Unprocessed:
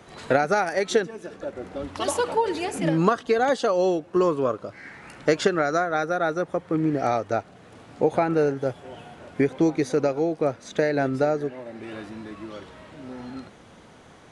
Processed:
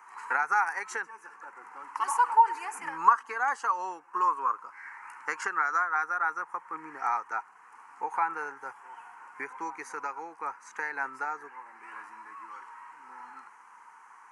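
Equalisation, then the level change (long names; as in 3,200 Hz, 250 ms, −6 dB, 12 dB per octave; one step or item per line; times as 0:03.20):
high-pass with resonance 940 Hz, resonance Q 6.1
parametric band 4,600 Hz −4.5 dB 0.43 octaves
phaser with its sweep stopped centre 1,500 Hz, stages 4
−4.0 dB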